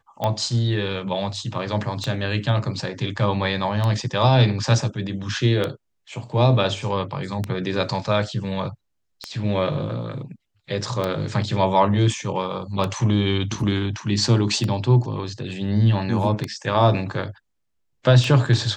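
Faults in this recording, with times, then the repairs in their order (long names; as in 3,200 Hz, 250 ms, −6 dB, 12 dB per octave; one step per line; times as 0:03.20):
scratch tick 33 1/3 rpm −11 dBFS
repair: click removal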